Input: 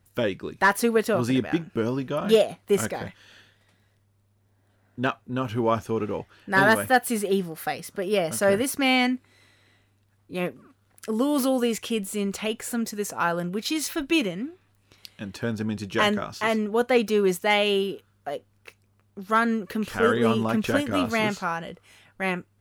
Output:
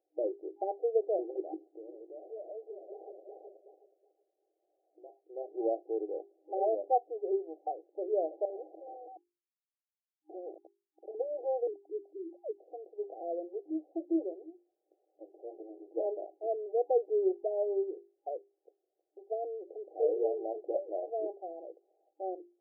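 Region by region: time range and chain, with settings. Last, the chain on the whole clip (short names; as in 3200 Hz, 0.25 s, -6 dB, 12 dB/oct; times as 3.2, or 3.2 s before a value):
1.54–5.19 regenerating reverse delay 0.185 s, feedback 46%, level -4 dB + compressor 5:1, threshold -36 dBFS
8.45–11.15 bell 1200 Hz +2.5 dB 1.5 oct + compressor 4:1, threshold -24 dBFS + Schmitt trigger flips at -43.5 dBFS
11.67–12.61 sine-wave speech + HPF 670 Hz 6 dB/oct + air absorption 470 m
15.24–15.97 transient shaper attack -9 dB, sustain +4 dB + Doppler distortion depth 0.35 ms
whole clip: FFT band-pass 310–810 Hz; notches 50/100/150/200/250/300/350/400 Hz; gain -6 dB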